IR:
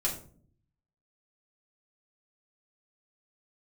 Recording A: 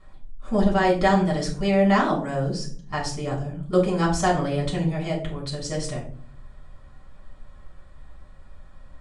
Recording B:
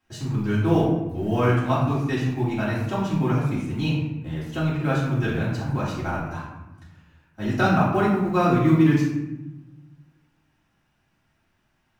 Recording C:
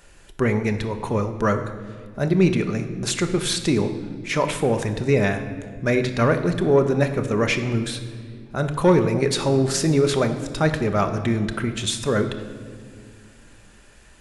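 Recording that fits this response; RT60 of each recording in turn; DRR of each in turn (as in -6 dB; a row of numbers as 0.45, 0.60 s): A; 0.50, 0.95, 2.1 s; -3.5, -9.5, 6.5 dB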